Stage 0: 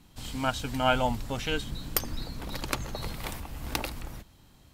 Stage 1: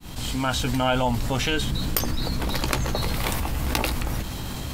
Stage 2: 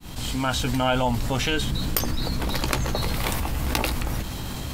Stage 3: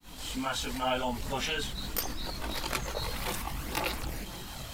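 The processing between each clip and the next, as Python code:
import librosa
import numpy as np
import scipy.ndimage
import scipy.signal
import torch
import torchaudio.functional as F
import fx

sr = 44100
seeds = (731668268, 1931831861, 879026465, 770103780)

y1 = fx.fade_in_head(x, sr, length_s=0.73)
y1 = fx.doubler(y1, sr, ms=16.0, db=-11)
y1 = fx.env_flatten(y1, sr, amount_pct=70)
y2 = y1
y3 = fx.low_shelf(y2, sr, hz=280.0, db=-8.5)
y3 = fx.chorus_voices(y3, sr, voices=4, hz=0.95, base_ms=21, depth_ms=3.0, mix_pct=65)
y3 = fx.quant_float(y3, sr, bits=4)
y3 = y3 * librosa.db_to_amplitude(-3.5)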